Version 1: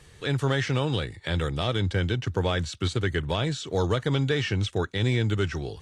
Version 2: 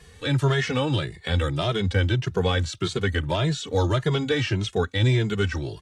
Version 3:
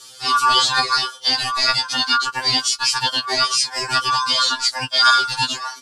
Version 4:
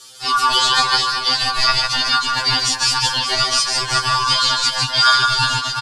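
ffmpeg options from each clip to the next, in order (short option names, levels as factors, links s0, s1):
-filter_complex "[0:a]asplit=2[s0][s1];[s1]adelay=2.4,afreqshift=1.7[s2];[s0][s2]amix=inputs=2:normalize=1,volume=1.88"
-af "aeval=exprs='val(0)*sin(2*PI*1300*n/s)':c=same,highshelf=f=2900:t=q:w=1.5:g=12.5,afftfilt=real='re*2.45*eq(mod(b,6),0)':imag='im*2.45*eq(mod(b,6),0)':win_size=2048:overlap=0.75,volume=2.24"
-filter_complex "[0:a]asubboost=boost=6:cutoff=110,asplit=2[s0][s1];[s1]aecho=0:1:150|375|712.5|1219|1978:0.631|0.398|0.251|0.158|0.1[s2];[s0][s2]amix=inputs=2:normalize=0"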